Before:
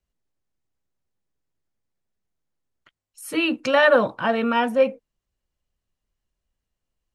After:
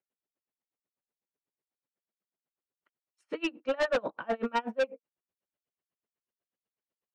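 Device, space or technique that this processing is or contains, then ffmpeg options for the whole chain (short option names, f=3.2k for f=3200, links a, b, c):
helicopter radio: -af "highpass=370,lowpass=2.9k,lowshelf=f=440:g=9.5,aeval=exprs='val(0)*pow(10,-32*(0.5-0.5*cos(2*PI*8.1*n/s))/20)':c=same,asoftclip=type=hard:threshold=-20dB,lowpass=7.5k,volume=-3dB"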